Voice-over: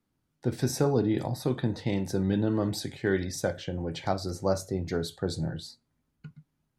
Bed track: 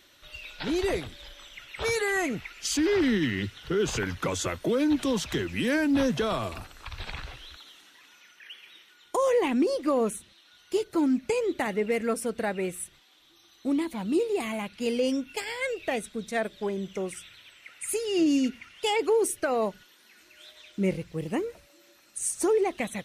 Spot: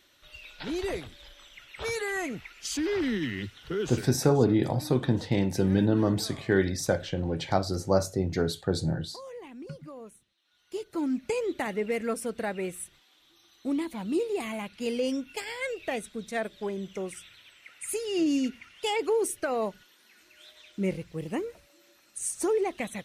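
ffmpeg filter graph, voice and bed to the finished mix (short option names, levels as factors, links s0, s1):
-filter_complex "[0:a]adelay=3450,volume=1.41[s0];[1:a]volume=4.22,afade=t=out:st=3.8:d=0.29:silence=0.177828,afade=t=in:st=10.37:d=0.95:silence=0.141254[s1];[s0][s1]amix=inputs=2:normalize=0"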